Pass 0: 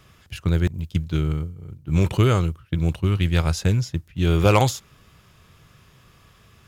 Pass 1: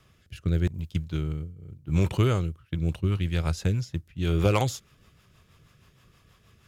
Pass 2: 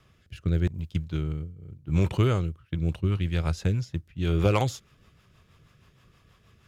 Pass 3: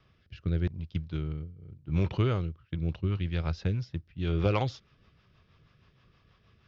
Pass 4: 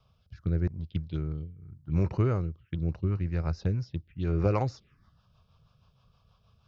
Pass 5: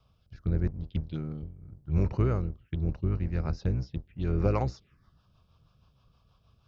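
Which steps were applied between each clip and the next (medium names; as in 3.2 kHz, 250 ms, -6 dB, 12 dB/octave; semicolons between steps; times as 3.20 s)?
rotary cabinet horn 0.85 Hz, later 6.3 Hz, at 2.28 s; trim -4 dB
treble shelf 6.2 kHz -6.5 dB
steep low-pass 5.6 kHz 48 dB/octave; trim -4 dB
touch-sensitive phaser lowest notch 310 Hz, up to 3.3 kHz, full sweep at -28 dBFS; trim +1 dB
octave divider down 1 oct, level -5 dB; trim -1 dB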